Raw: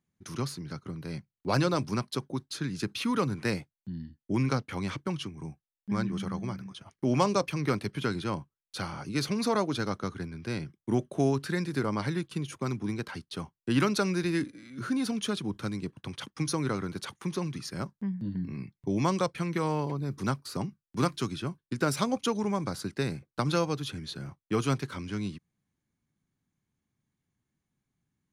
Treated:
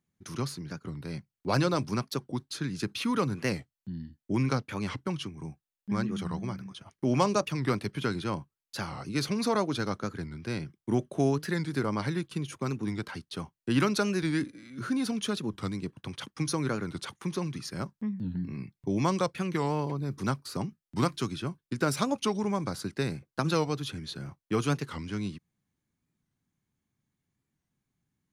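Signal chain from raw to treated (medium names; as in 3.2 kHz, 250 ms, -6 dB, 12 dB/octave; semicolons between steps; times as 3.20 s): warped record 45 rpm, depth 160 cents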